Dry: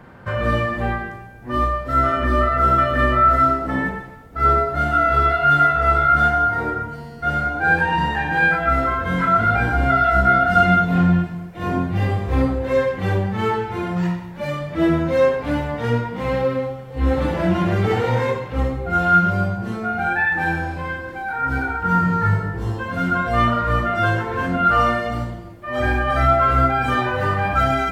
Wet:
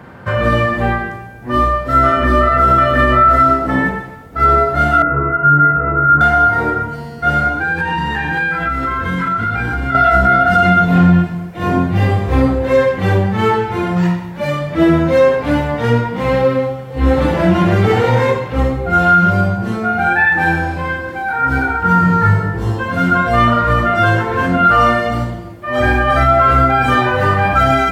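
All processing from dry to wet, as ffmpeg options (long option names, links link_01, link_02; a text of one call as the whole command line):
ffmpeg -i in.wav -filter_complex "[0:a]asettb=1/sr,asplit=3[link_01][link_02][link_03];[link_01]atrim=end=5.024[link_04];[link_02]atrim=start=5.02:end=6.21,asetpts=PTS-STARTPTS,afade=type=in:duration=0.004:curve=qsin,afade=type=out:start_time=1.186:duration=0.004:curve=qsin,lowpass=frequency=1300:width=0.5412,lowpass=frequency=1300:width=1.3066,equalizer=frequency=710:width_type=o:width=0.49:gain=-10.5,aecho=1:1:6.4:0.67,atrim=end_sample=52479[link_05];[link_03]atrim=start=6.206[link_06];[link_04][link_05]acrossfade=duration=0.004:curve1=hsin:curve2=qsin[link_07];[link_07][link_06]acrossfade=duration=0.004:curve1=qsin:curve2=hsin,asettb=1/sr,asplit=3[link_08][link_09][link_10];[link_08]atrim=end=7.544[link_11];[link_09]atrim=start=7.54:end=9.95,asetpts=PTS-STARTPTS,afade=type=in:duration=0.004:curve=qsin,afade=type=out:start_time=2.406:duration=0.004:curve=qsin,equalizer=frequency=650:width_type=o:width=0.44:gain=-11.5,acompressor=threshold=-21dB:ratio=6:attack=3.2:release=140:knee=1:detection=peak[link_12];[link_10]atrim=start=9.946[link_13];[link_11][link_12]acrossfade=duration=0.004:curve1=hsin:curve2=qsin[link_14];[link_14][link_13]acrossfade=duration=0.004:curve1=qsin:curve2=hsin,highpass=58,alimiter=level_in=8.5dB:limit=-1dB:release=50:level=0:latency=1,volume=-1.5dB" out.wav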